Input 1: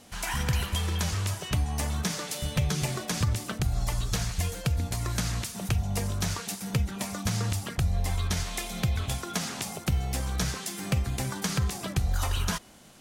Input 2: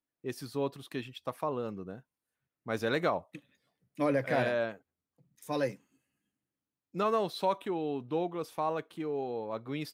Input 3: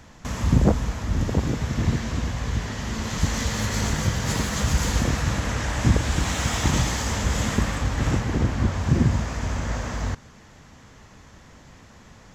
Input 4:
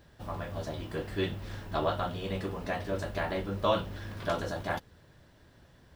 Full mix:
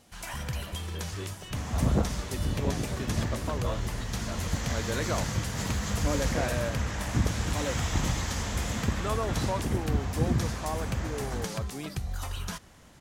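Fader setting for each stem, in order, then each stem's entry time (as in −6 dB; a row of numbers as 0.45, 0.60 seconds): −7.0, −3.0, −7.5, −10.0 decibels; 0.00, 2.05, 1.30, 0.00 seconds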